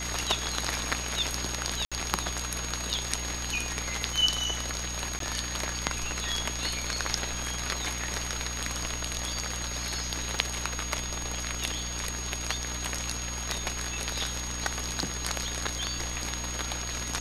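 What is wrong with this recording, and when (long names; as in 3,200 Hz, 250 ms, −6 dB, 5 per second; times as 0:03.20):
surface crackle 40 per second −41 dBFS
mains hum 60 Hz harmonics 5 −38 dBFS
whistle 6,600 Hz −36 dBFS
0:01.85–0:01.92: drop-out 66 ms
0:05.19–0:05.20: drop-out 13 ms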